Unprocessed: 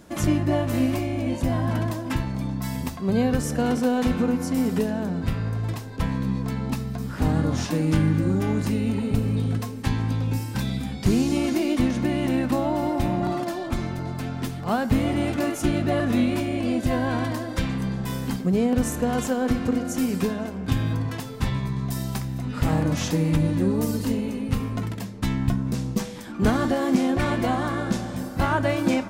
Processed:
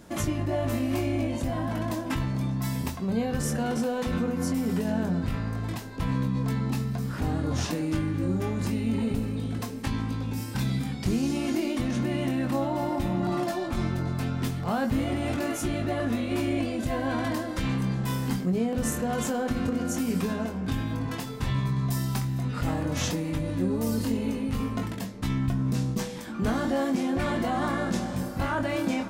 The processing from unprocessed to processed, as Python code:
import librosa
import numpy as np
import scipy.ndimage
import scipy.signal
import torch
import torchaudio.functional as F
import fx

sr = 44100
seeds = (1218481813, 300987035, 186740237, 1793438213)

p1 = fx.over_compress(x, sr, threshold_db=-26.0, ratio=-0.5)
p2 = x + (p1 * 10.0 ** (-2.5 / 20.0))
p3 = fx.doubler(p2, sr, ms=22.0, db=-6.0)
y = p3 * 10.0 ** (-7.5 / 20.0)